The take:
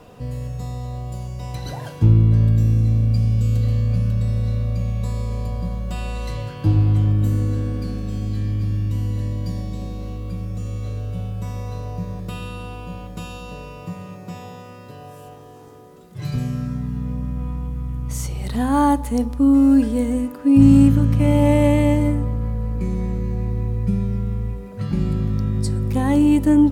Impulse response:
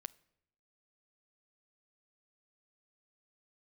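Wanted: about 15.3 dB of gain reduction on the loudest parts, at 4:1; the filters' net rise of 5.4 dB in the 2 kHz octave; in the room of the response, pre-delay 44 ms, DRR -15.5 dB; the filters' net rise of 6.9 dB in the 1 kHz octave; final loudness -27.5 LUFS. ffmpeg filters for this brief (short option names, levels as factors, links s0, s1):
-filter_complex "[0:a]equalizer=f=1000:t=o:g=7.5,equalizer=f=2000:t=o:g=4.5,acompressor=threshold=0.0501:ratio=4,asplit=2[s0][s1];[1:a]atrim=start_sample=2205,adelay=44[s2];[s1][s2]afir=irnorm=-1:irlink=0,volume=10[s3];[s0][s3]amix=inputs=2:normalize=0,volume=0.224"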